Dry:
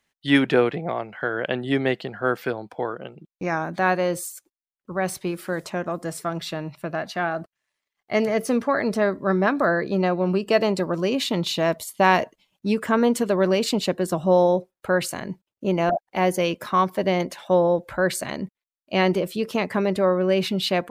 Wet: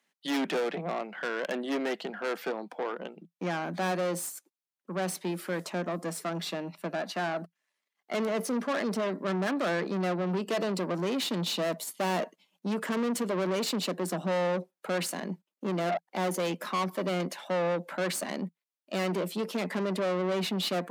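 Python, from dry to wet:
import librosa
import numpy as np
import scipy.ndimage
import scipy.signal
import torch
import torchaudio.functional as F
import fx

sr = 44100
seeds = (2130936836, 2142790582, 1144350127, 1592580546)

y = fx.tube_stage(x, sr, drive_db=26.0, bias=0.4)
y = scipy.signal.sosfilt(scipy.signal.cheby1(6, 1.0, 170.0, 'highpass', fs=sr, output='sos'), y)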